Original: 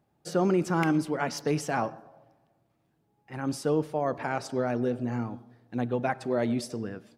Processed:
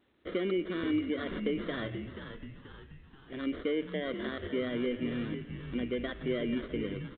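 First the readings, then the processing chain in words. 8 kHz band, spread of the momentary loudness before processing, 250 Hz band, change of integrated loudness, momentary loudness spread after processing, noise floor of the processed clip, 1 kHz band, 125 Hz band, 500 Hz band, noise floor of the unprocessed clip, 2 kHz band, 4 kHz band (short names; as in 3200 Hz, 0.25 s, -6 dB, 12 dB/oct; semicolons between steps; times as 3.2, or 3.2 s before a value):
under -35 dB, 10 LU, -3.5 dB, -5.0 dB, 14 LU, -55 dBFS, -15.0 dB, -8.5 dB, -5.0 dB, -72 dBFS, -4.0 dB, +1.0 dB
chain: HPF 50 Hz 12 dB/oct; in parallel at 0 dB: limiter -23 dBFS, peak gain reduction 10 dB; on the sum: compressor 2:1, threshold -26 dBFS, peak gain reduction 5.5 dB; sample-and-hold 17×; air absorption 170 m; fixed phaser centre 350 Hz, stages 4; on a send: frequency-shifting echo 0.482 s, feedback 50%, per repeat -93 Hz, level -8.5 dB; on the sum: gain -2.5 dB; A-law 64 kbps 8000 Hz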